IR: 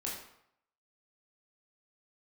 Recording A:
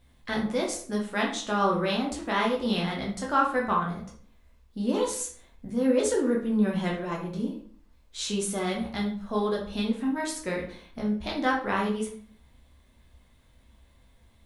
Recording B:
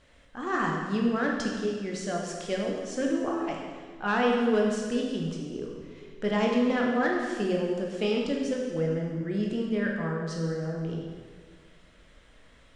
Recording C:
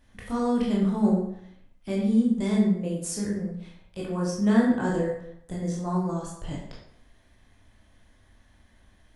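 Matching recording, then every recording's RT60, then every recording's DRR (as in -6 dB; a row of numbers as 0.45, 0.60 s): C; 0.50, 1.7, 0.70 s; -2.5, -1.5, -4.5 dB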